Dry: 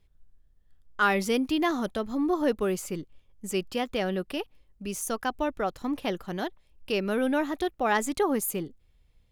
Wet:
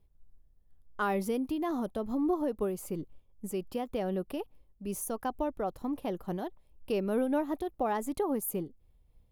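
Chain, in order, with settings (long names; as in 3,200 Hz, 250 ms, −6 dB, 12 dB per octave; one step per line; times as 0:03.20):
flat-topped bell 3,300 Hz −10 dB 2.9 octaves
downward compressor 2.5 to 1, threshold −28 dBFS, peak gain reduction 6 dB
amplitude modulation by smooth noise, depth 60%
level +3 dB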